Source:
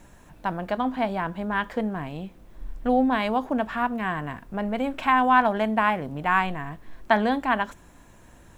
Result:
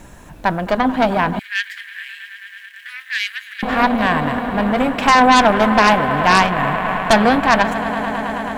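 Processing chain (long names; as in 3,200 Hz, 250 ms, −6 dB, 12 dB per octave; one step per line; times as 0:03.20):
echo that builds up and dies away 108 ms, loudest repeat 5, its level −17 dB
harmonic generator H 5 −11 dB, 6 −10 dB, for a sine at −6 dBFS
0:01.39–0:03.63: Chebyshev high-pass filter 1,700 Hz, order 5
level +3 dB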